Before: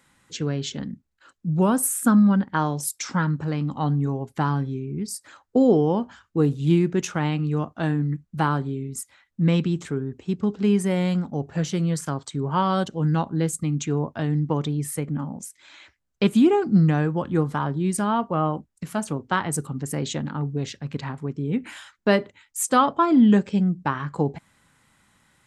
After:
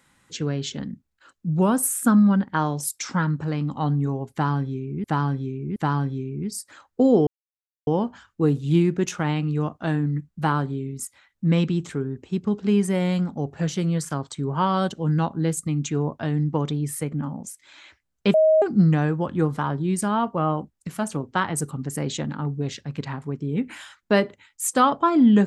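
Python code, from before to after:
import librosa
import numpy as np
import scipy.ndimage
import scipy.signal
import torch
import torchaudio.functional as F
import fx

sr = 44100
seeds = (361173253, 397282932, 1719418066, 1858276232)

y = fx.edit(x, sr, fx.repeat(start_s=4.32, length_s=0.72, count=3),
    fx.insert_silence(at_s=5.83, length_s=0.6),
    fx.bleep(start_s=16.3, length_s=0.28, hz=630.0, db=-13.0), tone=tone)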